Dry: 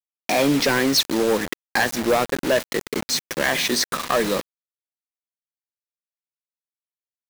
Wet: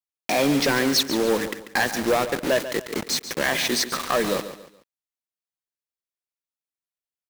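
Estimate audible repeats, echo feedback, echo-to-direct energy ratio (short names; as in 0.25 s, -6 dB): 3, 34%, -11.5 dB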